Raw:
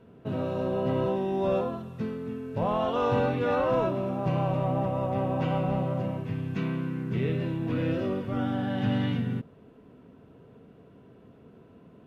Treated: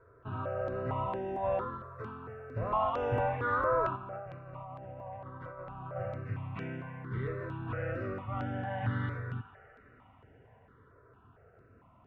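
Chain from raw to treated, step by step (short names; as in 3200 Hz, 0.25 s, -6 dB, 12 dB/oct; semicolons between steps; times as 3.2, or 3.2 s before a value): EQ curve 110 Hz 0 dB, 170 Hz -14 dB, 1300 Hz +6 dB, 4700 Hz -17 dB; band-limited delay 0.161 s, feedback 80%, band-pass 1500 Hz, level -17 dB; 3.96–5.96 negative-ratio compressor -41 dBFS, ratio -1; step phaser 4.4 Hz 800–4100 Hz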